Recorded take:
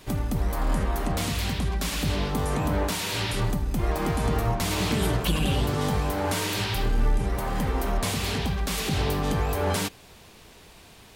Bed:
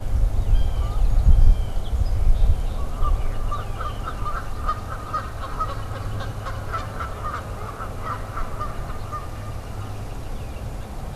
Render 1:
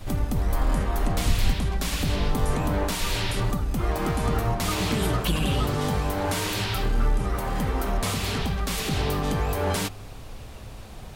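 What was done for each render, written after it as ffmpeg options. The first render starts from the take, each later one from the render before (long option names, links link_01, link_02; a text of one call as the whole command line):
ffmpeg -i in.wav -i bed.wav -filter_complex "[1:a]volume=-9.5dB[link_01];[0:a][link_01]amix=inputs=2:normalize=0" out.wav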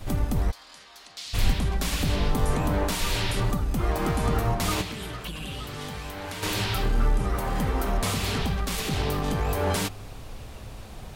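ffmpeg -i in.wav -filter_complex "[0:a]asplit=3[link_01][link_02][link_03];[link_01]afade=type=out:start_time=0.5:duration=0.02[link_04];[link_02]bandpass=frequency=4500:width_type=q:width=2.1,afade=type=in:start_time=0.5:duration=0.02,afade=type=out:start_time=1.33:duration=0.02[link_05];[link_03]afade=type=in:start_time=1.33:duration=0.02[link_06];[link_04][link_05][link_06]amix=inputs=3:normalize=0,asettb=1/sr,asplit=3[link_07][link_08][link_09];[link_07]atrim=end=4.814[link_10];[link_08]atrim=start=4.81:end=6.43,asetpts=PTS-STARTPTS,afade=type=in:duration=0.004:curve=qsin,afade=type=out:start_time=1.616:duration=0.004:curve=qsin,acrossover=split=1700|4200[link_11][link_12][link_13];[link_11]acompressor=threshold=-36dB:ratio=4[link_14];[link_12]acompressor=threshold=-40dB:ratio=4[link_15];[link_13]acompressor=threshold=-47dB:ratio=4[link_16];[link_14][link_15][link_16]amix=inputs=3:normalize=0[link_17];[link_09]atrim=start=6.426[link_18];[link_10][link_17]acrossfade=duration=0.004:curve1=hsin:curve2=qsin[link_19];[link_19][link_18]acrossfade=duration=0.004:curve1=qsin:curve2=hsin,asettb=1/sr,asplit=3[link_20][link_21][link_22];[link_20]atrim=end=8.614[link_23];[link_21]atrim=start=8.61:end=9.45,asetpts=PTS-STARTPTS,afade=type=in:duration=0.004:curve=qsin,afade=type=out:start_time=0.836:duration=0.004:curve=qsin,aeval=exprs='if(lt(val(0),0),0.708*val(0),val(0))':channel_layout=same[link_24];[link_22]atrim=start=9.446[link_25];[link_23][link_24]acrossfade=duration=0.004:curve1=hsin:curve2=qsin[link_26];[link_26][link_25]acrossfade=duration=0.004:curve1=qsin:curve2=hsin" out.wav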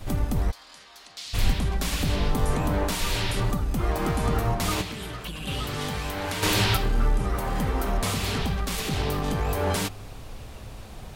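ffmpeg -i in.wav -filter_complex "[0:a]asettb=1/sr,asplit=3[link_01][link_02][link_03];[link_01]atrim=end=5.474[link_04];[link_02]atrim=start=5.47:end=6.77,asetpts=PTS-STARTPTS,afade=type=in:duration=0.004:curve=qsin,afade=type=out:start_time=1.296:duration=0.004:curve=qsin,acontrast=34[link_05];[link_03]atrim=start=6.766[link_06];[link_04][link_05]acrossfade=duration=0.004:curve1=hsin:curve2=qsin[link_07];[link_07][link_06]acrossfade=duration=0.004:curve1=qsin:curve2=hsin" out.wav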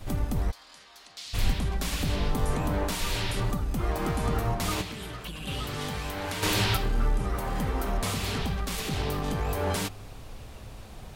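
ffmpeg -i in.wav -af "volume=-3dB" out.wav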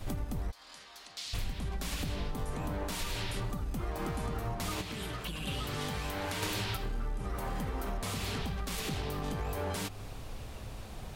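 ffmpeg -i in.wav -af "acompressor=threshold=-32dB:ratio=6" out.wav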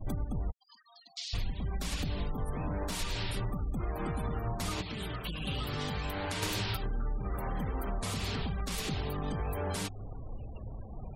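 ffmpeg -i in.wav -af "afftfilt=real='re*gte(hypot(re,im),0.00708)':imag='im*gte(hypot(re,im),0.00708)':win_size=1024:overlap=0.75,bass=frequency=250:gain=2,treble=frequency=4000:gain=3" out.wav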